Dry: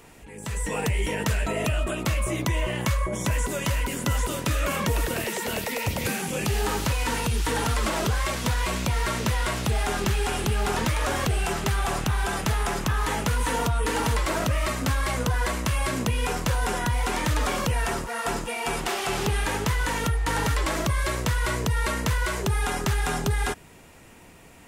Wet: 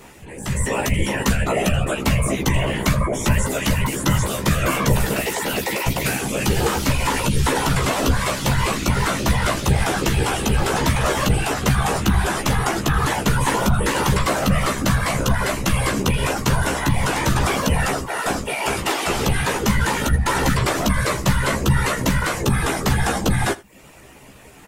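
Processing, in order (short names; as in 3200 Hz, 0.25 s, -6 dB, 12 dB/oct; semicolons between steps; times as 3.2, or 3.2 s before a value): reverb removal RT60 0.55 s; whisperiser; doubler 15 ms -4 dB; echo 81 ms -21.5 dB; gain +5.5 dB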